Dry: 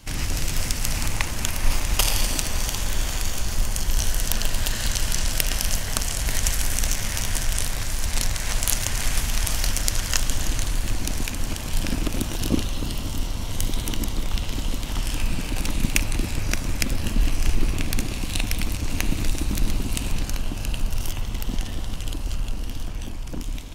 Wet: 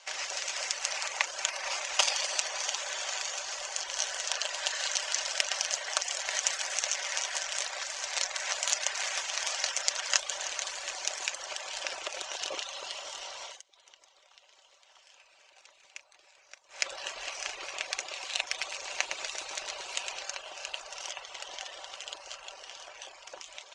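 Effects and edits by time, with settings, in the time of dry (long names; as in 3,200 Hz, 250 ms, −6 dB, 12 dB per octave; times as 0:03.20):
0:10.65–0:11.43: high-shelf EQ 5,400 Hz +4 dB
0:13.44–0:16.88: duck −21.5 dB, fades 0.19 s
0:18.47–0:20.26: single-tap delay 109 ms −6 dB
whole clip: reverb reduction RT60 0.56 s; elliptic band-pass filter 570–6,900 Hz, stop band 40 dB; comb filter 5.2 ms, depth 32%; level −1 dB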